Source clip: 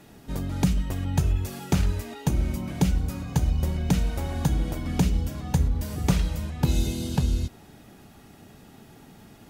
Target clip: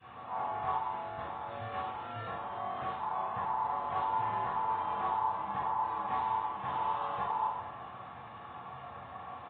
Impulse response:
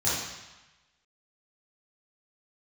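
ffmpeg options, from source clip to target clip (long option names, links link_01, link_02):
-filter_complex "[0:a]volume=28dB,asoftclip=hard,volume=-28dB,alimiter=level_in=11.5dB:limit=-24dB:level=0:latency=1,volume=-11.5dB,asettb=1/sr,asplit=3[link_01][link_02][link_03];[link_01]atrim=end=0.784[link_04];[link_02]atrim=start=0.78:end=3,asetpts=PTS-STARTPTS,afade=type=in:duration=0.004:curve=qsin,afade=type=out:start_time=2.216:duration=0.004:curve=qsin,highpass=frequency=190:poles=1[link_05];[link_03]atrim=start=2.996[link_06];[link_04][link_05]acrossfade=duration=0.004:curve1=hsin:curve2=qsin[link_07];[link_07][link_06]acrossfade=duration=0.004:curve1=qsin:curve2=hsin,aeval=exprs='val(0)*sin(2*PI*940*n/s)':channel_layout=same,aresample=8000,aresample=44100,asplit=2[link_08][link_09];[link_09]adelay=160,highpass=300,lowpass=3400,asoftclip=type=hard:threshold=-35.5dB,volume=-19dB[link_10];[link_08][link_10]amix=inputs=2:normalize=0[link_11];[1:a]atrim=start_sample=2205,afade=type=out:start_time=0.39:duration=0.01,atrim=end_sample=17640,asetrate=52920,aresample=44100[link_12];[link_11][link_12]afir=irnorm=-1:irlink=0,adynamicequalizer=threshold=0.00708:dfrequency=680:dqfactor=1.1:tfrequency=680:tqfactor=1.1:attack=5:release=100:ratio=0.375:range=2:mode=boostabove:tftype=bell,bandreject=frequency=610:width=12,volume=-6dB" -ar 48000 -c:a aac -b:a 32k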